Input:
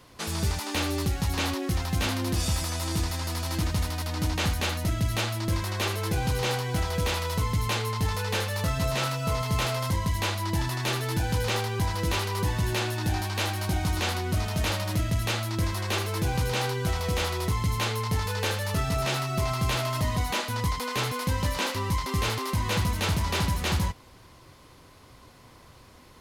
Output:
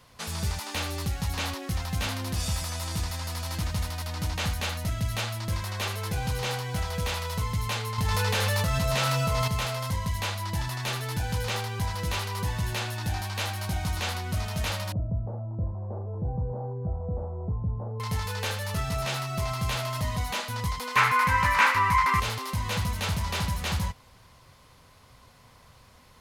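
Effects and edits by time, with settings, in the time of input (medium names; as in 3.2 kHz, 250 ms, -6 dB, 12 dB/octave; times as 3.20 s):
7.98–9.48 s: level flattener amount 100%
14.92–18.00 s: inverse Chebyshev low-pass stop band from 2.4 kHz, stop band 60 dB
20.96–22.20 s: high-order bell 1.5 kHz +15 dB
whole clip: peaking EQ 330 Hz -11 dB 0.58 oct; trim -2 dB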